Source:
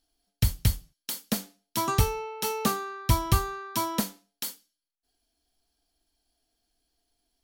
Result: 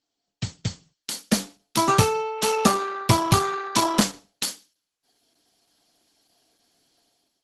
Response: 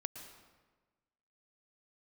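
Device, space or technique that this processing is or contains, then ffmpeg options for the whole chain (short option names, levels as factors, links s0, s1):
video call: -af "highpass=f=120:w=0.5412,highpass=f=120:w=1.3066,dynaudnorm=f=700:g=3:m=5.62,volume=0.891" -ar 48000 -c:a libopus -b:a 12k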